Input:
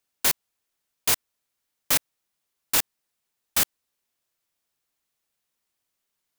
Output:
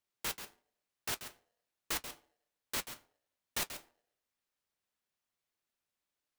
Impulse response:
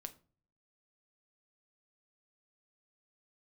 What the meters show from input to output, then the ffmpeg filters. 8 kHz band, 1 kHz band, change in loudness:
-15.0 dB, -10.5 dB, -15.5 dB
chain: -filter_complex "[0:a]highshelf=f=5200:g=-7.5,alimiter=limit=0.133:level=0:latency=1:release=344,flanger=delay=4.5:depth=4.6:regen=-55:speed=1.2:shape=sinusoidal,asplit=2[s0][s1];[1:a]atrim=start_sample=2205,adelay=135[s2];[s1][s2]afir=irnorm=-1:irlink=0,volume=0.531[s3];[s0][s3]amix=inputs=2:normalize=0,aeval=exprs='val(0)*sgn(sin(2*PI*590*n/s))':c=same,volume=0.794"

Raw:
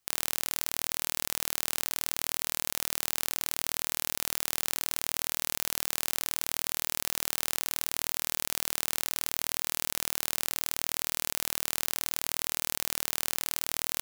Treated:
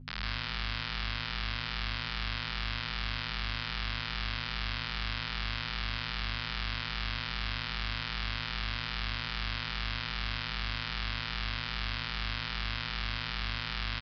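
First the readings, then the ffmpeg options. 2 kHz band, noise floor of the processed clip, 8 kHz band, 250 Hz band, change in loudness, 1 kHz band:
+3.5 dB, -38 dBFS, -29.5 dB, +2.5 dB, -4.5 dB, +1.5 dB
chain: -filter_complex "[0:a]highpass=f=1300:w=0.5412,highpass=f=1300:w=1.3066,aeval=exprs='val(0)+0.00562*(sin(2*PI*50*n/s)+sin(2*PI*2*50*n/s)/2+sin(2*PI*3*50*n/s)/3+sin(2*PI*4*50*n/s)/4+sin(2*PI*5*50*n/s)/5)':c=same,adynamicsmooth=sensitivity=2.5:basefreq=2600,aecho=1:1:160.3|262.4:0.891|0.282,aresample=11025,aresample=44100,asplit=2[s0][s1];[s1]adelay=9.2,afreqshift=-2.5[s2];[s0][s2]amix=inputs=2:normalize=1,volume=1.68"

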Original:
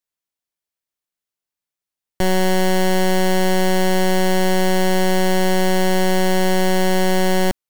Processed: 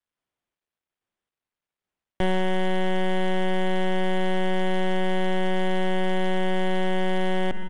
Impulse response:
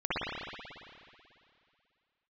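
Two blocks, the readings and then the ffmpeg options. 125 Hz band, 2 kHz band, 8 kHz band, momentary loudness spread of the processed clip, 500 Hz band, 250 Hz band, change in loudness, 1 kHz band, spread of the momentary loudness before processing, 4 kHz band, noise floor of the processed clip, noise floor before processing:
no reading, -7.0 dB, -21.5 dB, 0 LU, -7.5 dB, -7.5 dB, -8.0 dB, -7.5 dB, 0 LU, -9.0 dB, under -85 dBFS, under -85 dBFS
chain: -filter_complex "[0:a]bandreject=f=205.5:t=h:w=4,bandreject=f=411:t=h:w=4,asplit=2[s0][s1];[1:a]atrim=start_sample=2205,afade=t=out:st=0.44:d=0.01,atrim=end_sample=19845[s2];[s1][s2]afir=irnorm=-1:irlink=0,volume=0.0398[s3];[s0][s3]amix=inputs=2:normalize=0,alimiter=limit=0.0841:level=0:latency=1:release=35,asplit=2[s4][s5];[s5]volume=22.4,asoftclip=hard,volume=0.0447,volume=0.501[s6];[s4][s6]amix=inputs=2:normalize=0,aresample=8000,aresample=44100" -ar 22050 -c:a adpcm_ima_wav

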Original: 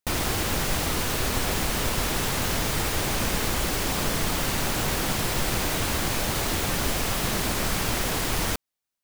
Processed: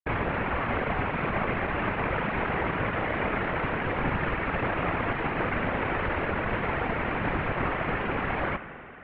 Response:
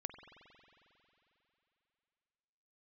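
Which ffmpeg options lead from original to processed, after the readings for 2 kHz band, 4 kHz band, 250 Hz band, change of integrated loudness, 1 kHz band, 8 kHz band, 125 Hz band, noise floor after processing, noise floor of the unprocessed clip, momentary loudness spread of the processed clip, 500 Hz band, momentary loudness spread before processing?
+1.0 dB, -15.0 dB, -1.0 dB, -3.0 dB, +1.5 dB, under -40 dB, -2.5 dB, -41 dBFS, under -85 dBFS, 1 LU, +1.0 dB, 0 LU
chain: -filter_complex "[0:a]acrusher=bits=3:mix=0:aa=0.5,highpass=f=220:t=q:w=0.5412,highpass=f=220:t=q:w=1.307,lowpass=f=2600:t=q:w=0.5176,lowpass=f=2600:t=q:w=0.7071,lowpass=f=2600:t=q:w=1.932,afreqshift=-230,asplit=2[s0][s1];[1:a]atrim=start_sample=2205,lowpass=4400[s2];[s1][s2]afir=irnorm=-1:irlink=0,volume=1.88[s3];[s0][s3]amix=inputs=2:normalize=0,afftfilt=real='hypot(re,im)*cos(2*PI*random(0))':imag='hypot(re,im)*sin(2*PI*random(1))':win_size=512:overlap=0.75,volume=1.19"

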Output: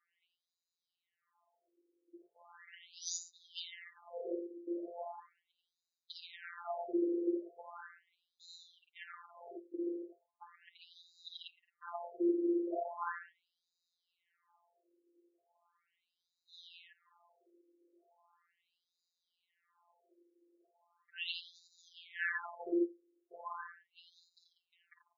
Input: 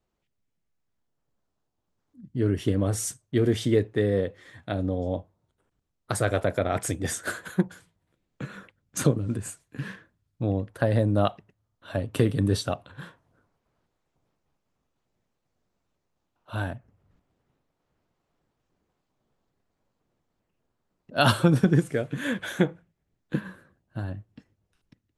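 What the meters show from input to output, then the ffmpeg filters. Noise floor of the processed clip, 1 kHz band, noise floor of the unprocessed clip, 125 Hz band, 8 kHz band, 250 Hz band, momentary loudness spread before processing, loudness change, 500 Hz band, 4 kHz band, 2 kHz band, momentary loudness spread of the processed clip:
under -85 dBFS, -12.0 dB, -79 dBFS, under -40 dB, under -10 dB, -12.0 dB, 15 LU, -13.0 dB, -13.5 dB, -11.0 dB, -11.0 dB, 23 LU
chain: -filter_complex "[0:a]acrossover=split=330|3000[s0][s1][s2];[s1]acompressor=threshold=0.0178:ratio=6[s3];[s0][s3][s2]amix=inputs=3:normalize=0,equalizer=f=100:t=o:w=0.33:g=5,equalizer=f=315:t=o:w=0.33:g=6,equalizer=f=500:t=o:w=0.33:g=-10,aecho=1:1:48|54|86|143|192:0.237|0.422|0.501|0.2|0.168,asplit=2[s4][s5];[s5]acrusher=bits=4:mode=log:mix=0:aa=0.000001,volume=0.299[s6];[s4][s6]amix=inputs=2:normalize=0,highshelf=f=2300:g=-10,areverse,acompressor=threshold=0.0316:ratio=12,areverse,afftfilt=real='hypot(re,im)*cos(PI*b)':imag='0':win_size=1024:overlap=0.75,bandreject=f=5600:w=5,aecho=1:1:4.8:0.49,afftfilt=real='re*between(b*sr/1024,370*pow(5200/370,0.5+0.5*sin(2*PI*0.38*pts/sr))/1.41,370*pow(5200/370,0.5+0.5*sin(2*PI*0.38*pts/sr))*1.41)':imag='im*between(b*sr/1024,370*pow(5200/370,0.5+0.5*sin(2*PI*0.38*pts/sr))/1.41,370*pow(5200/370,0.5+0.5*sin(2*PI*0.38*pts/sr))*1.41)':win_size=1024:overlap=0.75,volume=4.22"

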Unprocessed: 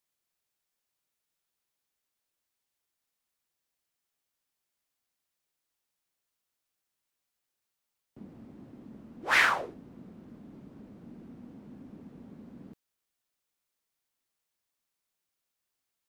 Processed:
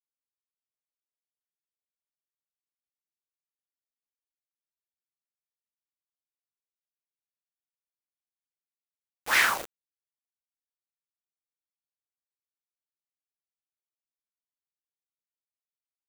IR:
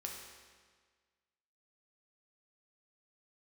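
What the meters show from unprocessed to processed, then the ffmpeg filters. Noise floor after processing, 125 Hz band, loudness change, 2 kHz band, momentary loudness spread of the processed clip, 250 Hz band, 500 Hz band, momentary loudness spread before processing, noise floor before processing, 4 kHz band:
under -85 dBFS, no reading, +1.5 dB, +0.5 dB, 16 LU, -10.5 dB, -2.5 dB, 20 LU, -85 dBFS, +3.0 dB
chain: -af "aeval=exprs='val(0)*gte(abs(val(0)),0.02)':c=same,highshelf=f=5300:g=12,volume=0.891"

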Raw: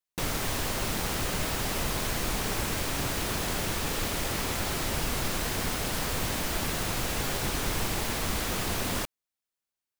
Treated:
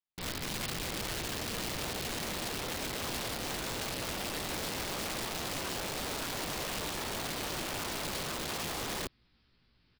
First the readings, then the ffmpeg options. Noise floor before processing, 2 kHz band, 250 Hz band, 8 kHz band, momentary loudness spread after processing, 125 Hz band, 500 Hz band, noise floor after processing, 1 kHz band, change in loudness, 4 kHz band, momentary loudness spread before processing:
under -85 dBFS, -5.5 dB, -6.5 dB, -6.0 dB, 0 LU, -9.5 dB, -5.0 dB, -70 dBFS, -5.5 dB, -5.5 dB, -3.5 dB, 0 LU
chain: -filter_complex "[0:a]acrossover=split=410|1900[s0][s1][s2];[s1]alimiter=level_in=3.98:limit=0.0631:level=0:latency=1,volume=0.251[s3];[s0][s3][s2]amix=inputs=3:normalize=0,asubboost=boost=8:cutoff=220,asplit=2[s4][s5];[s5]adelay=17,volume=0.668[s6];[s4][s6]amix=inputs=2:normalize=0,aresample=11025,aresample=44100,aeval=exprs='(mod(15*val(0)+1,2)-1)/15':c=same,areverse,acompressor=mode=upward:threshold=0.0141:ratio=2.5,areverse,volume=0.376"

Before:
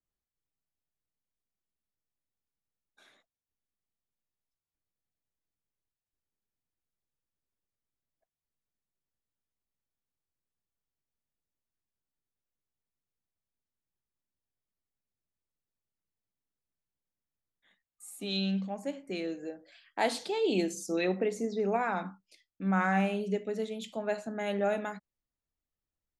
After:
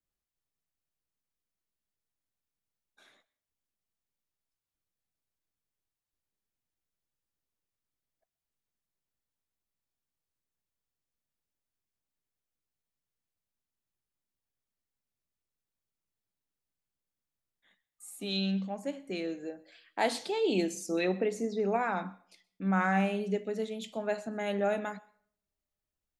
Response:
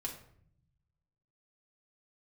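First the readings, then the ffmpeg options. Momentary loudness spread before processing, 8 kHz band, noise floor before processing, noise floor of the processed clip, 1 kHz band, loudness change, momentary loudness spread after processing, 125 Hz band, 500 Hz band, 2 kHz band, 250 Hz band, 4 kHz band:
13 LU, 0.0 dB, under -85 dBFS, under -85 dBFS, 0.0 dB, 0.0 dB, 13 LU, 0.0 dB, 0.0 dB, 0.0 dB, 0.0 dB, 0.0 dB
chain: -filter_complex "[0:a]asplit=2[s0][s1];[s1]highpass=f=760:p=1[s2];[1:a]atrim=start_sample=2205,adelay=124[s3];[s2][s3]afir=irnorm=-1:irlink=0,volume=0.0944[s4];[s0][s4]amix=inputs=2:normalize=0"

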